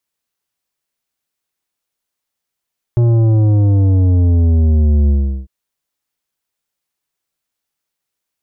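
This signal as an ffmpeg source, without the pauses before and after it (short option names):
-f lavfi -i "aevalsrc='0.335*clip((2.5-t)/0.38,0,1)*tanh(3.16*sin(2*PI*120*2.5/log(65/120)*(exp(log(65/120)*t/2.5)-1)))/tanh(3.16)':d=2.5:s=44100"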